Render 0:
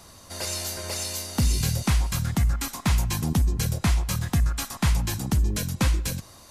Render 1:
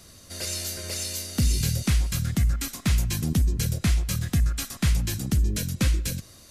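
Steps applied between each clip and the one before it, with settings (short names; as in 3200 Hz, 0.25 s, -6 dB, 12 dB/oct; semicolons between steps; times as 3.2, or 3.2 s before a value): bell 910 Hz -13 dB 0.78 oct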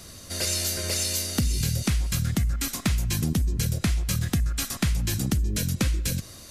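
compressor, threshold -27 dBFS, peak gain reduction 9 dB; gain +5.5 dB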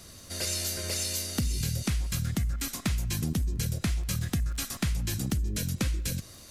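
crackle 40/s -36 dBFS; gain -4.5 dB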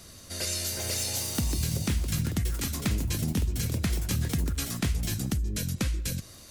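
echoes that change speed 0.494 s, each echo +5 st, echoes 2, each echo -6 dB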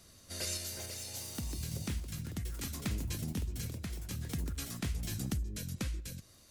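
random-step tremolo; gain -6 dB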